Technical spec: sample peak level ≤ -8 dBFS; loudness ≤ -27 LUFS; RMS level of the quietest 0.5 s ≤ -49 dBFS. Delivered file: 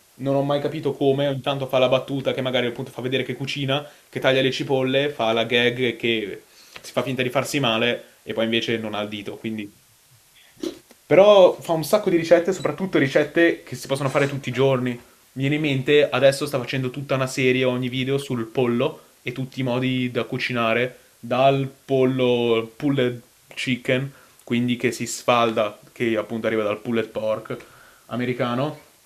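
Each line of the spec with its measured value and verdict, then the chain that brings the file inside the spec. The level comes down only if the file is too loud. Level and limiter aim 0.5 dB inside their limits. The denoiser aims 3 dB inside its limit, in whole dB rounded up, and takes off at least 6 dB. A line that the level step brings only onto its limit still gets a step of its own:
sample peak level -2.0 dBFS: fail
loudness -22.0 LUFS: fail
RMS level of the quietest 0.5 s -55 dBFS: OK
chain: gain -5.5 dB; limiter -8.5 dBFS

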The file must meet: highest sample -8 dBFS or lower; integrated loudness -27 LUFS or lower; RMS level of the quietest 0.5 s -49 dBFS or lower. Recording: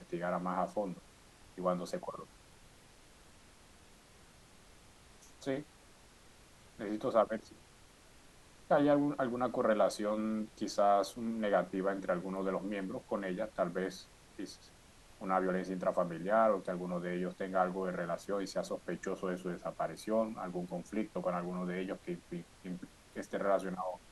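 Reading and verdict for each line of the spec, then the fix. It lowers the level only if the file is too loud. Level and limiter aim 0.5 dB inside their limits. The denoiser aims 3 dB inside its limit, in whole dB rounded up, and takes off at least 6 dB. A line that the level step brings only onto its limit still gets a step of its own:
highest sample -16.0 dBFS: OK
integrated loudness -35.5 LUFS: OK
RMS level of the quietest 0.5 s -60 dBFS: OK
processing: none

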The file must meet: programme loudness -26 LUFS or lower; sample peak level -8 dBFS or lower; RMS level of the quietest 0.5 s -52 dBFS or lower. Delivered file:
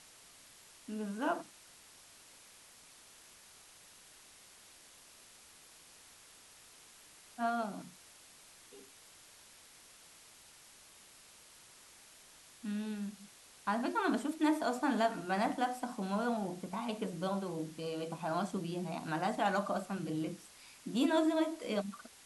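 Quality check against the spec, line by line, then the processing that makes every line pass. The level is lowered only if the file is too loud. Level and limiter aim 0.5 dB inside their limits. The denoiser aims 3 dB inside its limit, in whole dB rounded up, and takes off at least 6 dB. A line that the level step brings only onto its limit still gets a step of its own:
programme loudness -36.0 LUFS: OK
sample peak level -19.0 dBFS: OK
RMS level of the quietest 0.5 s -59 dBFS: OK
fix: none

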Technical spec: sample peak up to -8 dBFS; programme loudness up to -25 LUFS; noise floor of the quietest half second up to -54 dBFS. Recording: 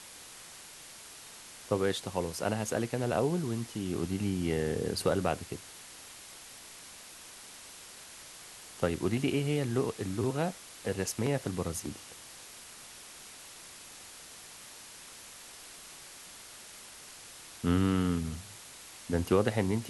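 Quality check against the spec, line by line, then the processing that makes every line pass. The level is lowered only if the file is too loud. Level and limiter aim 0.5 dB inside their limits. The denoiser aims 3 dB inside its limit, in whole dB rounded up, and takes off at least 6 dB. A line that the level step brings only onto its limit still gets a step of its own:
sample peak -12.0 dBFS: OK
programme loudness -32.0 LUFS: OK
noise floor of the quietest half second -50 dBFS: fail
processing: denoiser 7 dB, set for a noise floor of -50 dBFS

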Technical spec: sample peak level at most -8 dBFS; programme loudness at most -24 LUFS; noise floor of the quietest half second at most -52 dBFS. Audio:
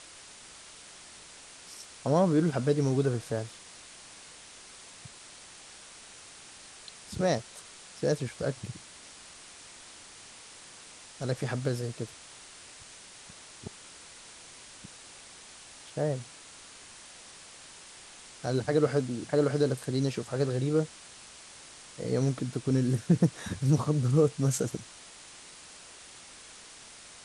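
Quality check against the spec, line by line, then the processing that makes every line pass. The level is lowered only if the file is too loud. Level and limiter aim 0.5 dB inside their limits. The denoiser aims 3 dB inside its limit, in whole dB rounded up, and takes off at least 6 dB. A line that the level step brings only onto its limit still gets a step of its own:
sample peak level -12.0 dBFS: OK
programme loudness -29.5 LUFS: OK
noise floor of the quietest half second -50 dBFS: fail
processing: denoiser 6 dB, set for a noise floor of -50 dBFS

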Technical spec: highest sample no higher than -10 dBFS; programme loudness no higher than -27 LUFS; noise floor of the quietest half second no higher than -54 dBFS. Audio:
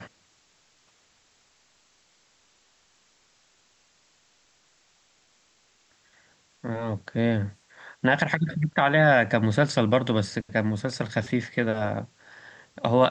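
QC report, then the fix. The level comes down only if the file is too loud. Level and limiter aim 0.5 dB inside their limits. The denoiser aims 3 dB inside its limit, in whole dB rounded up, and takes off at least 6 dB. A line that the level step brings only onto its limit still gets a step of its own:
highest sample -5.0 dBFS: fail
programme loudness -25.0 LUFS: fail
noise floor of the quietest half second -64 dBFS: OK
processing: gain -2.5 dB; limiter -10.5 dBFS

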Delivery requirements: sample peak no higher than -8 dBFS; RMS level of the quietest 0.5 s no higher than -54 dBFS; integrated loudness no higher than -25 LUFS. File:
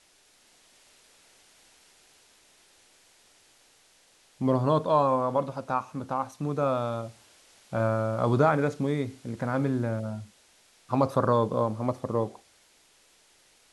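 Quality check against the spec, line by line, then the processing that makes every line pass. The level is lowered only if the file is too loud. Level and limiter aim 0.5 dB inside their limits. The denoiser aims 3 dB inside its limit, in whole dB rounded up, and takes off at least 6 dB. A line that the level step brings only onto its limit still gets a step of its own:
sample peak -9.5 dBFS: OK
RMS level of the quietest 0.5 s -62 dBFS: OK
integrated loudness -27.5 LUFS: OK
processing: none

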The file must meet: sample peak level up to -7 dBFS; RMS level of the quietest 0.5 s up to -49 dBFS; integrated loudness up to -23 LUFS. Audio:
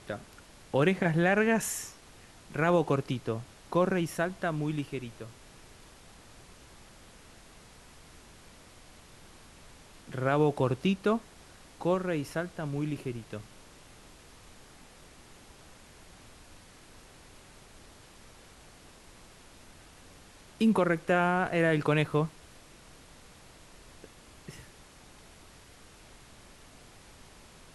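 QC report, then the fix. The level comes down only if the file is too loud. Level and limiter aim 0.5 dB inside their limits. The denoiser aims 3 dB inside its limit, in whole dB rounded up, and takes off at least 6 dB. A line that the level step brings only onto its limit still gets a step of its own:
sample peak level -13.0 dBFS: OK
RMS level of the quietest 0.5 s -54 dBFS: OK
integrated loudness -29.5 LUFS: OK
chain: none

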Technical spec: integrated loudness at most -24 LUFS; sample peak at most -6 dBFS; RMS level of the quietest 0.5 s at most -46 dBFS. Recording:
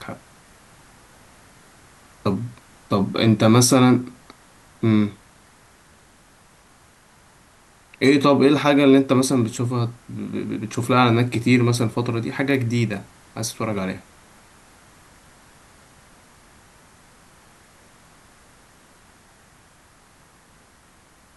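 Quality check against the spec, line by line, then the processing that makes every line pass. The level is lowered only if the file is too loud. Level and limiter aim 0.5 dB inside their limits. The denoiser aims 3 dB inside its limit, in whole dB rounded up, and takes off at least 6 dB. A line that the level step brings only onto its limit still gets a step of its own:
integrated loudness -19.5 LUFS: fail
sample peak -3.0 dBFS: fail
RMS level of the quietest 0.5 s -53 dBFS: OK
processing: gain -5 dB

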